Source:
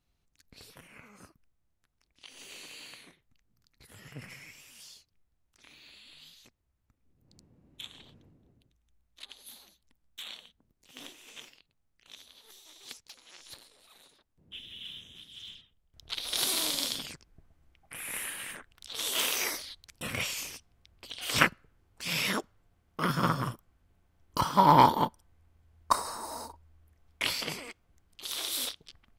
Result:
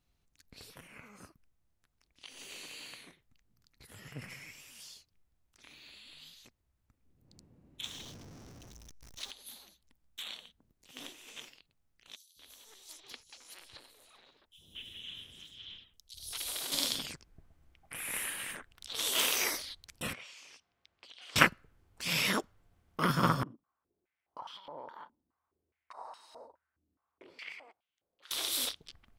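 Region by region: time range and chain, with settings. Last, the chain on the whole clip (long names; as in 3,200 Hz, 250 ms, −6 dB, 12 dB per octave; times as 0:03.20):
0:07.83–0:09.31: converter with a step at zero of −48.5 dBFS + parametric band 5,800 Hz +13.5 dB 0.49 octaves
0:12.16–0:16.72: notch filter 3,600 Hz, Q 26 + downward compressor 4 to 1, threshold −34 dBFS + three-band delay without the direct sound highs, lows, mids 200/230 ms, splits 180/4,700 Hz
0:20.13–0:21.36: high-pass filter 770 Hz 6 dB per octave + downward compressor 3 to 1, threshold −49 dBFS + high-frequency loss of the air 96 metres
0:23.43–0:28.31: downward compressor 20 to 1, threshold −30 dBFS + band-pass on a step sequencer 4.8 Hz 270–3,100 Hz
whole clip: no processing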